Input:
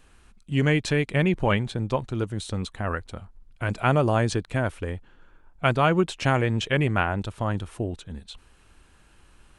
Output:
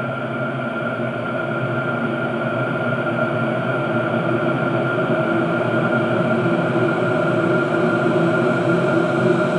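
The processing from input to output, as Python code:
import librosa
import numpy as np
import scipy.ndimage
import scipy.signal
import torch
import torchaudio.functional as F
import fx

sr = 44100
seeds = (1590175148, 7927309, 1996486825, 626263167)

p1 = scipy.signal.sosfilt(scipy.signal.butter(2, 56.0, 'highpass', fs=sr, output='sos'), x)
p2 = fx.over_compress(p1, sr, threshold_db=-24.0, ratio=-0.5)
p3 = p1 + (p2 * 10.0 ** (1.0 / 20.0))
p4 = fx.small_body(p3, sr, hz=(230.0, 340.0, 600.0, 1400.0), ring_ms=85, db=14)
p5 = fx.paulstretch(p4, sr, seeds[0], factor=28.0, window_s=1.0, from_s=5.52)
y = p5 * 10.0 ** (-5.0 / 20.0)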